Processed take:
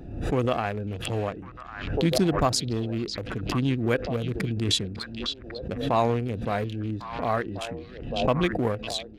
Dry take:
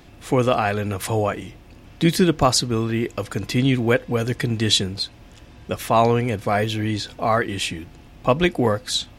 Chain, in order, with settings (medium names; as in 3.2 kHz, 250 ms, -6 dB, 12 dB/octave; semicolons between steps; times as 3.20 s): local Wiener filter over 41 samples; repeats whose band climbs or falls 550 ms, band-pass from 3.7 kHz, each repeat -1.4 oct, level -6 dB; swell ahead of each attack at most 62 dB/s; trim -6 dB